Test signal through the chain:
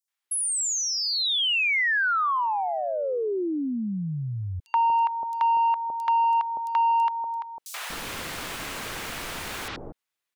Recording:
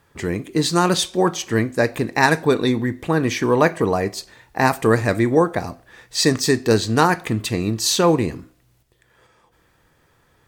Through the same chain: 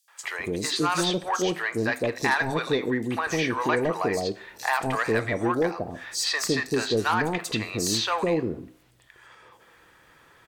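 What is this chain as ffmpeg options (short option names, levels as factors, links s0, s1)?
-filter_complex "[0:a]asplit=2[s0][s1];[s1]highpass=f=720:p=1,volume=4.47,asoftclip=type=tanh:threshold=0.841[s2];[s0][s2]amix=inputs=2:normalize=0,lowpass=f=4900:p=1,volume=0.501,acrossover=split=670|5200[s3][s4][s5];[s4]adelay=80[s6];[s3]adelay=240[s7];[s7][s6][s5]amix=inputs=3:normalize=0,acompressor=threshold=0.0158:ratio=1.5"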